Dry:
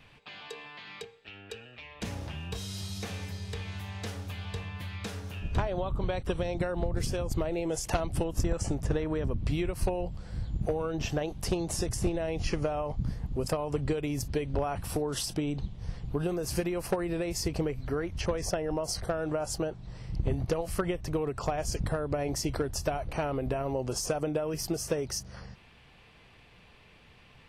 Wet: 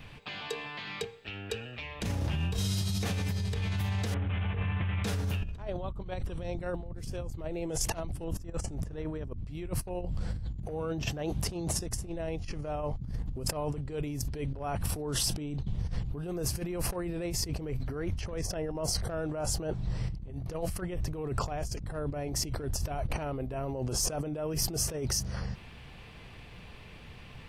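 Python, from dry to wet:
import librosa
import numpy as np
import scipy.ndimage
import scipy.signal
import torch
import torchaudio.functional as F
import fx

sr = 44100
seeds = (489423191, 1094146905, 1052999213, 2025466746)

y = fx.cvsd(x, sr, bps=16000, at=(4.14, 5.04))
y = fx.highpass(y, sr, hz=51.0, slope=12, at=(10.66, 11.8))
y = fx.low_shelf(y, sr, hz=240.0, db=6.5)
y = fx.over_compress(y, sr, threshold_db=-34.0, ratio=-1.0)
y = fx.high_shelf(y, sr, hz=12000.0, db=5.0)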